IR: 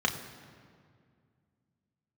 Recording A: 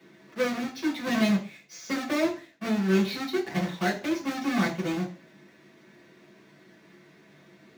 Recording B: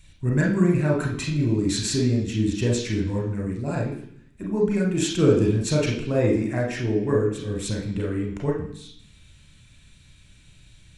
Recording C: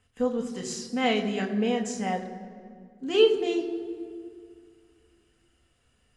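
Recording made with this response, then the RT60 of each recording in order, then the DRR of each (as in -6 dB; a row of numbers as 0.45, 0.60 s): C; 0.40, 0.65, 2.1 s; -5.5, -2.0, 2.0 dB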